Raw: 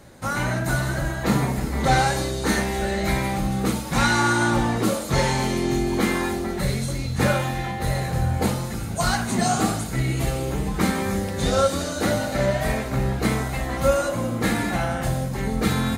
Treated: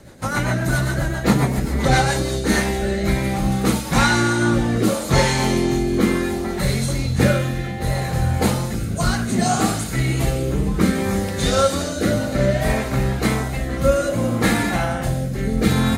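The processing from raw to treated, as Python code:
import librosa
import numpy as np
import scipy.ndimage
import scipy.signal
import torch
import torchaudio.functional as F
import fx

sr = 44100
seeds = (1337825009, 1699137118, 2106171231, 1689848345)

y = fx.rotary_switch(x, sr, hz=7.5, then_hz=0.65, switch_at_s=1.88)
y = y * 10.0 ** (5.5 / 20.0)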